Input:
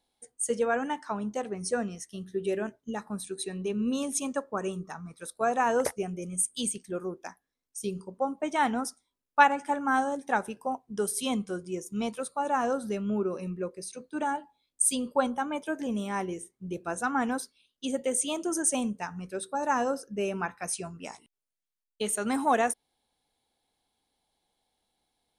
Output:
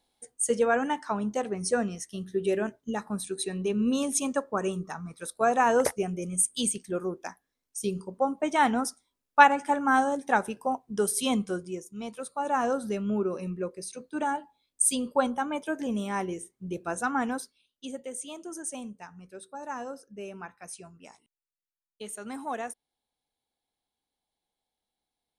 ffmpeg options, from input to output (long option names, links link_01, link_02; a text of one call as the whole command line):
ffmpeg -i in.wav -af "volume=12.5dB,afade=type=out:start_time=11.52:duration=0.41:silence=0.266073,afade=type=in:start_time=11.93:duration=0.66:silence=0.334965,afade=type=out:start_time=16.99:duration=1.08:silence=0.298538" out.wav